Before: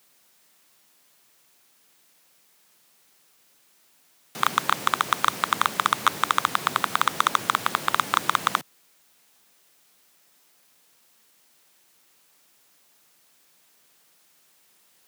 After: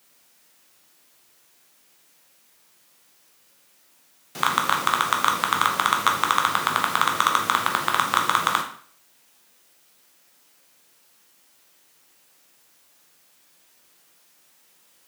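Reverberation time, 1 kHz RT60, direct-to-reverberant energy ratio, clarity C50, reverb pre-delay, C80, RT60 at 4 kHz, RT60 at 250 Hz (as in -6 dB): 0.50 s, 0.50 s, 1.5 dB, 7.5 dB, 5 ms, 12.0 dB, 0.45 s, 0.50 s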